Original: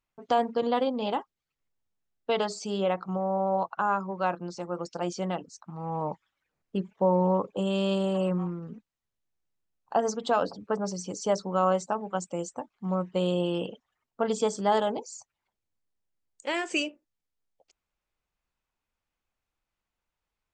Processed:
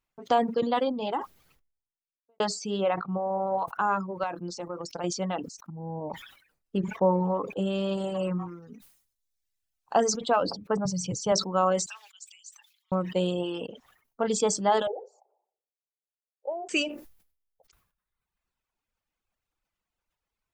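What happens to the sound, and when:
0:00.80–0:02.40: fade out and dull
0:02.91–0:03.66: low-pass filter 4,500 Hz 24 dB per octave
0:04.23–0:05.04: downward compressor, threshold −29 dBFS
0:05.70–0:06.10: moving average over 36 samples
0:06.78–0:07.98: high-shelf EQ 3,200 Hz −6.5 dB
0:08.48–0:10.18: high-shelf EQ 2,400 Hz +8 dB
0:10.85–0:11.32: low shelf with overshoot 190 Hz +10 dB, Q 3
0:11.86–0:12.92: four-pole ladder high-pass 2,700 Hz, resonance 35%
0:13.67–0:14.35: fade in
0:14.87–0:16.69: elliptic band-pass filter 400–810 Hz, stop band 50 dB
whole clip: reverb reduction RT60 1.2 s; level that may fall only so fast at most 95 dB per second; level +1.5 dB

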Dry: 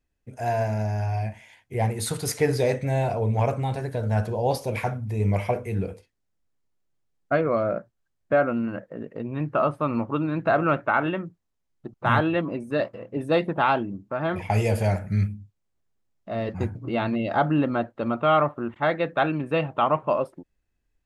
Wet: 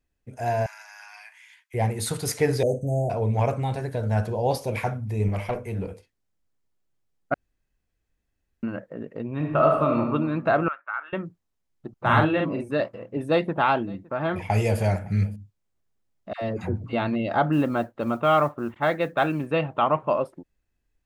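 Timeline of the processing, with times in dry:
0:00.66–0:01.74: Butterworth high-pass 1,100 Hz
0:02.63–0:03.10: Chebyshev band-stop filter 740–6,500 Hz, order 5
0:05.28–0:05.91: tube saturation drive 20 dB, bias 0.4
0:07.34–0:08.63: fill with room tone
0:09.36–0:09.99: thrown reverb, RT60 1.2 s, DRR 0.5 dB
0:10.68–0:11.13: four-pole ladder band-pass 1,600 Hz, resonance 45%
0:12.00–0:12.71: double-tracking delay 45 ms −3 dB
0:13.27–0:15.36: single-tap delay 562 ms −24 dB
0:16.33–0:16.93: all-pass dispersion lows, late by 91 ms, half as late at 780 Hz
0:17.52–0:19.47: noise that follows the level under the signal 35 dB

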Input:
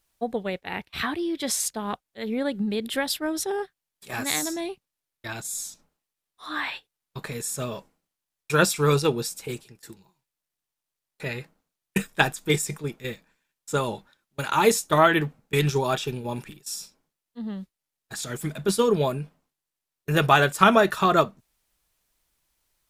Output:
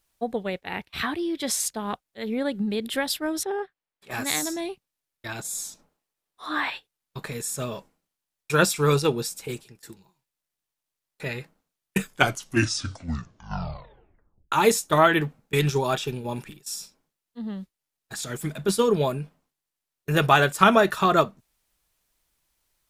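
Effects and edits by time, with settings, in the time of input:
0:03.43–0:04.11: bass and treble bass −6 dB, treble −15 dB
0:05.39–0:06.70: parametric band 520 Hz +5.5 dB 3 octaves
0:11.97: tape stop 2.55 s

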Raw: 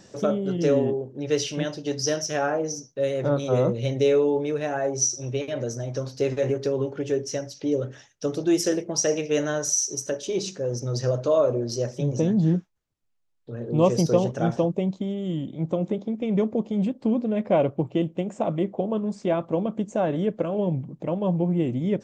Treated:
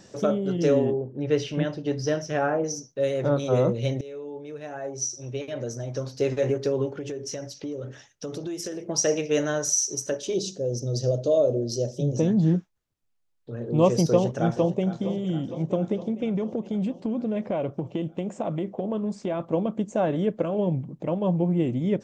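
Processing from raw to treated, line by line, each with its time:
0:00.93–0:02.64: bass and treble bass +4 dB, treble −14 dB
0:04.01–0:06.33: fade in, from −23 dB
0:06.94–0:08.89: downward compressor 10 to 1, threshold −29 dBFS
0:10.34–0:12.16: flat-topped bell 1,500 Hz −16 dB
0:14.10–0:14.85: delay throw 460 ms, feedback 70%, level −13 dB
0:16.28–0:19.40: downward compressor, threshold −23 dBFS

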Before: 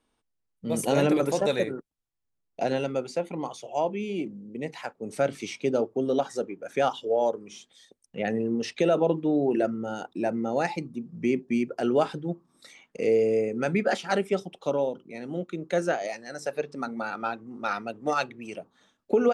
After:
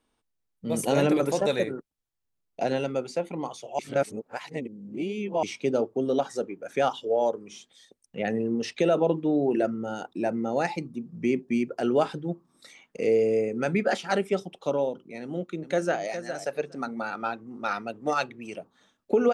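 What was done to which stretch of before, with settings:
0:03.79–0:05.43: reverse
0:15.21–0:16.03: delay throw 410 ms, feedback 10%, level −10 dB

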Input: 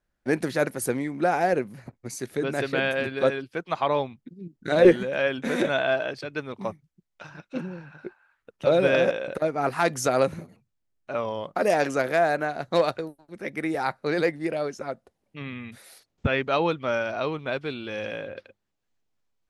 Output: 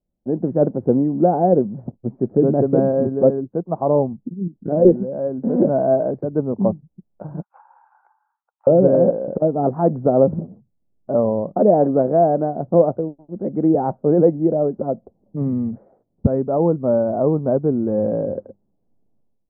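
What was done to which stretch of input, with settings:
0:01.94–0:05.91: high-frequency loss of the air 220 metres
0:07.42–0:08.67: Chebyshev high-pass filter 830 Hz, order 6
whole clip: inverse Chebyshev low-pass filter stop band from 3,200 Hz, stop band 70 dB; parametric band 200 Hz +7 dB 0.88 octaves; automatic gain control gain up to 14 dB; level −1 dB

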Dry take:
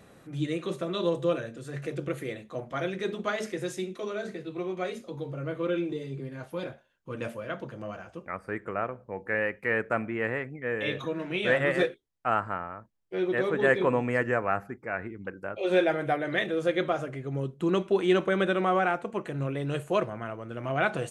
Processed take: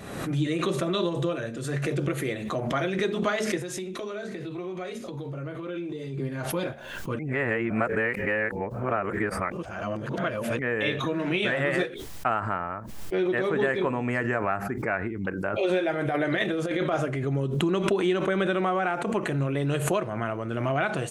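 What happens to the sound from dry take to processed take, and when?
0:03.61–0:06.18: downward compressor 4 to 1, threshold −39 dBFS
0:07.19–0:10.59: reverse
0:16.01–0:17.16: compressor whose output falls as the input rises −28 dBFS, ratio −0.5
whole clip: downward compressor, threshold −29 dBFS; notch filter 500 Hz, Q 12; background raised ahead of every attack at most 49 dB per second; level +7 dB

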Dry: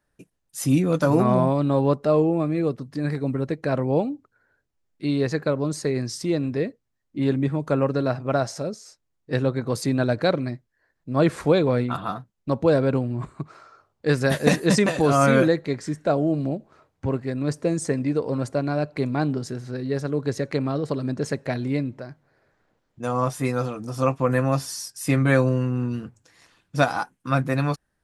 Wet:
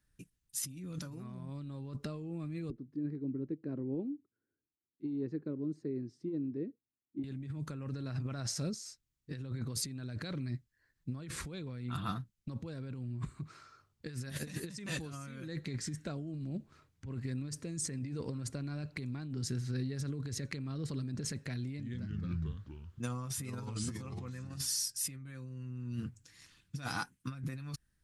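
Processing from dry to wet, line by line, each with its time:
0:02.70–0:07.24: resonant band-pass 330 Hz, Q 2.8
0:21.64–0:24.58: delay with pitch and tempo change per echo 147 ms, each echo −3 semitones, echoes 3
whole clip: guitar amp tone stack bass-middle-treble 6-0-2; compressor whose output falls as the input rises −48 dBFS, ratio −1; level +8.5 dB

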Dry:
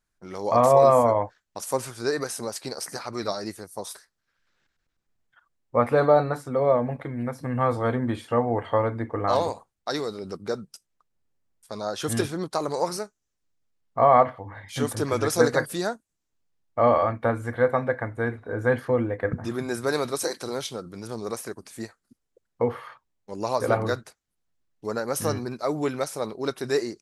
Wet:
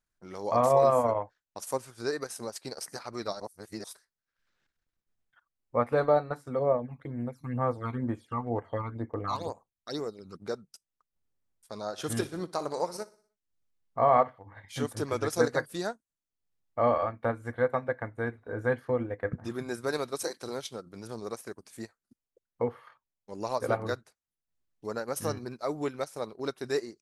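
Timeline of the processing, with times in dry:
0:03.40–0:03.84: reverse
0:06.59–0:10.41: all-pass phaser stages 12, 2.1 Hz, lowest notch 510–4,100 Hz
0:11.85–0:14.28: repeating echo 60 ms, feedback 48%, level −13 dB
whole clip: transient designer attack 0 dB, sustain −8 dB; level −5.5 dB

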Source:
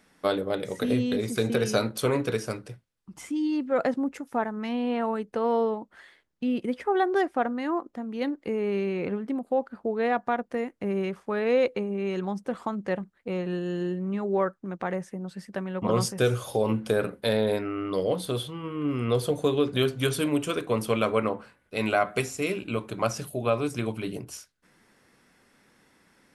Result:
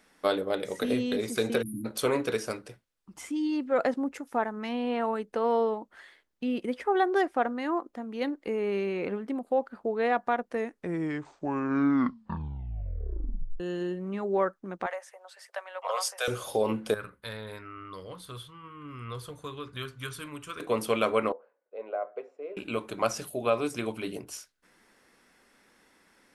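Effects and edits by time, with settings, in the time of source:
0:01.62–0:01.85: time-frequency box erased 330–9,400 Hz
0:10.47: tape stop 3.13 s
0:14.86–0:16.28: Butterworth high-pass 560 Hz 48 dB per octave
0:16.94–0:20.60: drawn EQ curve 120 Hz 0 dB, 220 Hz −14 dB, 720 Hz −19 dB, 1,100 Hz −3 dB, 2,800 Hz −10 dB
0:21.32–0:22.57: four-pole ladder band-pass 570 Hz, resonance 60%
whole clip: parametric band 120 Hz −10 dB 1.5 octaves

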